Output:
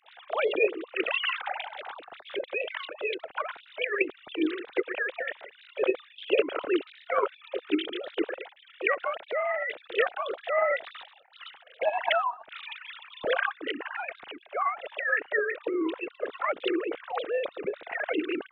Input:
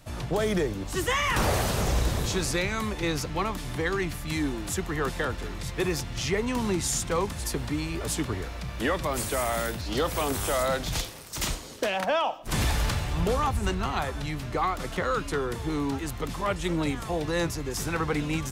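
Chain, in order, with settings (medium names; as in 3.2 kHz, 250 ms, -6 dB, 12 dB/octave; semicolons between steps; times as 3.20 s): formants replaced by sine waves; dynamic bell 350 Hz, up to +6 dB, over -38 dBFS, Q 1.3; formant shift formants +5 st; trim -4 dB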